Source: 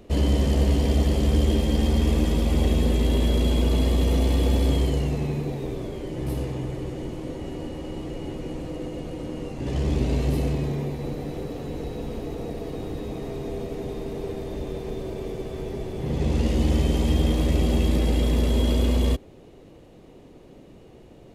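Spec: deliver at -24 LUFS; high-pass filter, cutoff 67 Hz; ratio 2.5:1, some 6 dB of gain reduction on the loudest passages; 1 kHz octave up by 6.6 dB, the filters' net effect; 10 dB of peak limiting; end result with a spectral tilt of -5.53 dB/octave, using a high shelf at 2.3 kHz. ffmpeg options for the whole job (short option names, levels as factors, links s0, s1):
-af "highpass=67,equalizer=f=1000:t=o:g=7.5,highshelf=f=2300:g=7,acompressor=threshold=0.0447:ratio=2.5,volume=3.35,alimiter=limit=0.178:level=0:latency=1"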